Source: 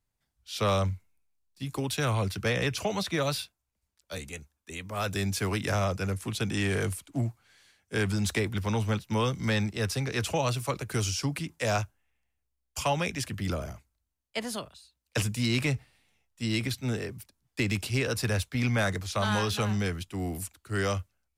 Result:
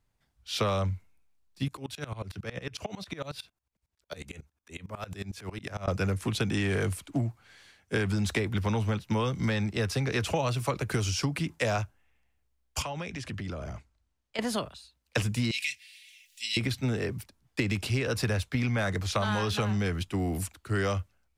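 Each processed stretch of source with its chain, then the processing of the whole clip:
1.68–5.88 compressor 3:1, threshold -37 dBFS + dB-ramp tremolo swelling 11 Hz, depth 22 dB
12.82–14.39 LPF 8300 Hz + compressor, threshold -40 dBFS
15.51–16.57 inverse Chebyshev high-pass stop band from 1200 Hz + comb 4.1 ms, depth 68% + upward compressor, threshold -44 dBFS
whole clip: high shelf 5500 Hz -8.5 dB; compressor, threshold -32 dBFS; gain +7 dB

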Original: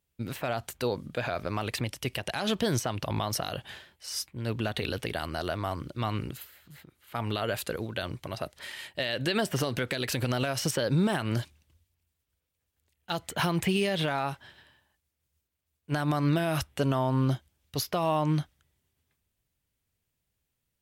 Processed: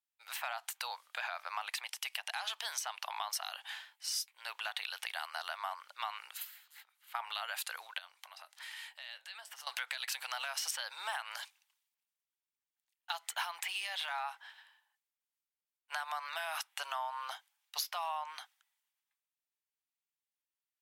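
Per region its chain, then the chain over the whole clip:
7.98–9.67 doubler 22 ms -12.5 dB + compressor 4:1, threshold -44 dBFS
whole clip: elliptic high-pass 810 Hz, stop band 70 dB; compressor 6:1, threshold -39 dBFS; three-band expander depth 40%; gain +3.5 dB

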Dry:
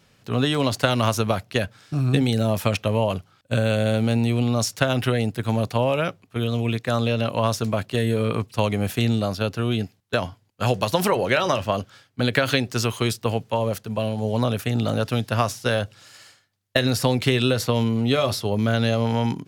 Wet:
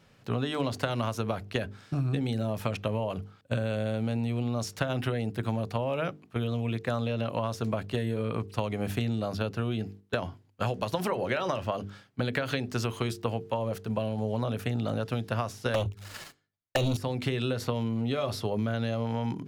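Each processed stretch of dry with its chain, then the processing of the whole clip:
15.74–16.97 sample leveller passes 5 + notches 50/100/150/200/250 Hz + envelope flanger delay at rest 11.5 ms, full sweep at -13 dBFS
whole clip: high shelf 3000 Hz -8 dB; notches 50/100/150/200/250/300/350/400/450 Hz; compressor 6:1, threshold -26 dBFS

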